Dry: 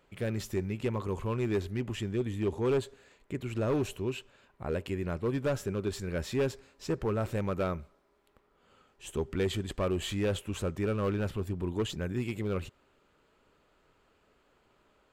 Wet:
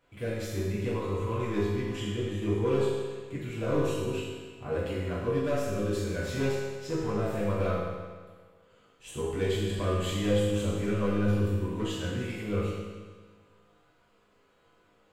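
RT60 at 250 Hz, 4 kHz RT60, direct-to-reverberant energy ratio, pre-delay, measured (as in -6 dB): 1.5 s, 1.4 s, -9.5 dB, 4 ms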